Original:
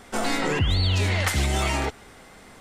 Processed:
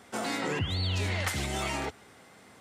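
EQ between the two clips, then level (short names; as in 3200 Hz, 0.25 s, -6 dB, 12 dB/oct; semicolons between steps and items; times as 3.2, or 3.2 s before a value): HPF 83 Hz 24 dB/oct; -6.5 dB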